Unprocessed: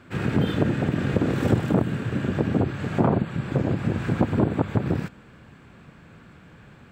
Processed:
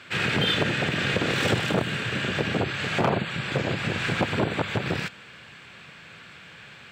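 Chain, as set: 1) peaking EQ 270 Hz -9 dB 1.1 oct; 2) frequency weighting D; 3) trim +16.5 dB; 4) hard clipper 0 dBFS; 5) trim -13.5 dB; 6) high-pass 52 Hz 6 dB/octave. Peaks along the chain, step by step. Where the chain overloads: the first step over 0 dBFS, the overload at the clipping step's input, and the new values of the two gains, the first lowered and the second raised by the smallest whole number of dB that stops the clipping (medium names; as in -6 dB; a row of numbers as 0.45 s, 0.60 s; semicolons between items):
-8.5 dBFS, -9.5 dBFS, +7.0 dBFS, 0.0 dBFS, -13.5 dBFS, -12.0 dBFS; step 3, 7.0 dB; step 3 +9.5 dB, step 5 -6.5 dB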